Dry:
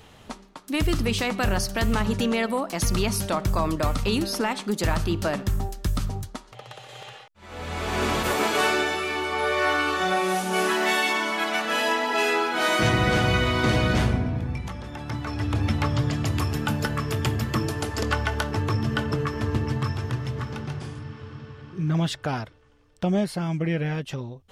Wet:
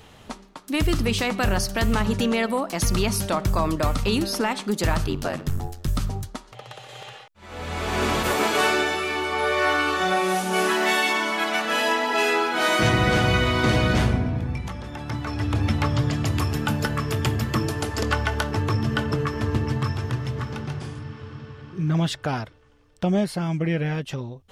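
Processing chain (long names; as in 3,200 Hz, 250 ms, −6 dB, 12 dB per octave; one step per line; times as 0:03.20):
0:05.06–0:05.88: ring modulation 45 Hz
level +1.5 dB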